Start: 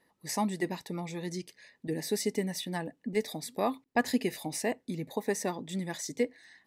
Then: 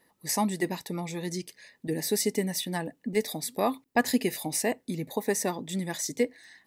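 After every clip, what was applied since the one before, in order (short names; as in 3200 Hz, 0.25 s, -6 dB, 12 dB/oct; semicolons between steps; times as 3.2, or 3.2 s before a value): high shelf 8900 Hz +9.5 dB; gain +3 dB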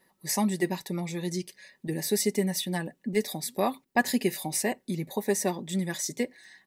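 comb 5.3 ms, depth 53%; gain -1 dB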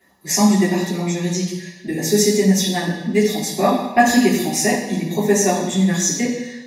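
reverb RT60 1.0 s, pre-delay 3 ms, DRR -6.5 dB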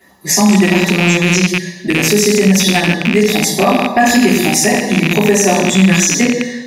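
rattling part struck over -27 dBFS, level -12 dBFS; maximiser +10.5 dB; gain -1 dB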